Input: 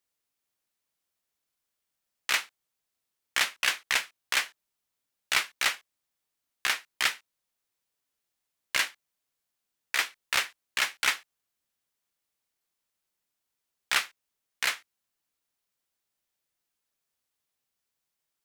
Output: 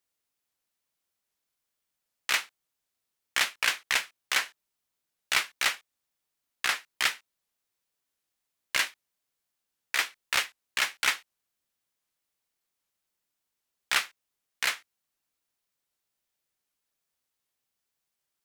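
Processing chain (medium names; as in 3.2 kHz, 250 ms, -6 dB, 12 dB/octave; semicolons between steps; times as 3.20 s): warped record 78 rpm, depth 160 cents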